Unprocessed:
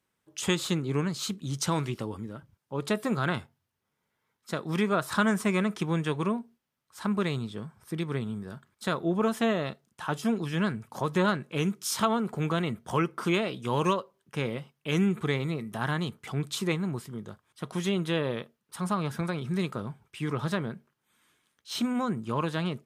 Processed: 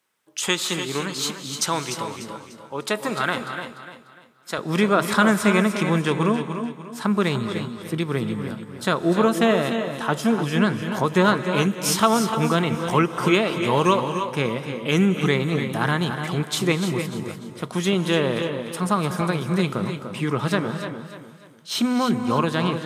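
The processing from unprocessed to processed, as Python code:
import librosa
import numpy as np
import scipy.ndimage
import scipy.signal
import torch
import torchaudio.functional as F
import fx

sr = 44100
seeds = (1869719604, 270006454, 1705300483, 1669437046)

y = fx.highpass(x, sr, hz=fx.steps((0.0, 630.0), (4.58, 130.0)), slope=6)
y = fx.echo_feedback(y, sr, ms=296, feedback_pct=35, wet_db=-9.5)
y = fx.rev_gated(y, sr, seeds[0], gate_ms=340, shape='rising', drr_db=10.0)
y = F.gain(torch.from_numpy(y), 8.0).numpy()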